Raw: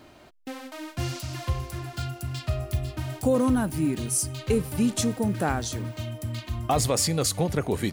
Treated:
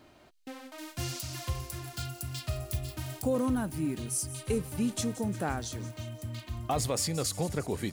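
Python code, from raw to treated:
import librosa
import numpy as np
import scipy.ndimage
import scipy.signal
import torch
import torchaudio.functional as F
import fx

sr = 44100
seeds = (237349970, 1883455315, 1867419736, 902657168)

y = fx.high_shelf(x, sr, hz=4100.0, db=10.5, at=(0.78, 3.22))
y = fx.echo_wet_highpass(y, sr, ms=176, feedback_pct=61, hz=5600.0, wet_db=-12)
y = F.gain(torch.from_numpy(y), -6.5).numpy()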